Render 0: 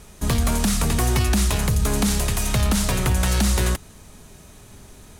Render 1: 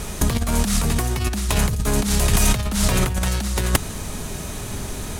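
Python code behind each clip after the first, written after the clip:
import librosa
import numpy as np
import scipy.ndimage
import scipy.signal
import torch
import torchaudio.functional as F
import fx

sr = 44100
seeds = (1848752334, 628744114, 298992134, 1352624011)

y = fx.over_compress(x, sr, threshold_db=-25.0, ratio=-0.5)
y = y * 10.0 ** (8.0 / 20.0)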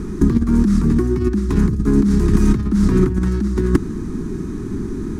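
y = fx.curve_eq(x, sr, hz=(120.0, 170.0, 350.0, 590.0, 1100.0, 1700.0, 2900.0, 5500.0, 13000.0), db=(0, 6, 13, -22, -5, -7, -20, -14, -25))
y = y * 10.0 ** (2.0 / 20.0)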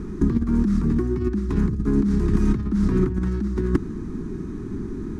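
y = fx.lowpass(x, sr, hz=3600.0, slope=6)
y = y * 10.0 ** (-5.5 / 20.0)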